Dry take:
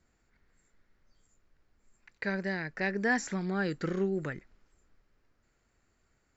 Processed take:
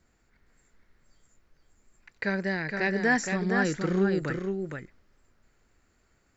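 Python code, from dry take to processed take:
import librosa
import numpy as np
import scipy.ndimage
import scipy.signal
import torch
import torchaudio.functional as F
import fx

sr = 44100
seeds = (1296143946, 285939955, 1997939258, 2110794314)

y = x + 10.0 ** (-5.0 / 20.0) * np.pad(x, (int(466 * sr / 1000.0), 0))[:len(x)]
y = F.gain(torch.from_numpy(y), 4.0).numpy()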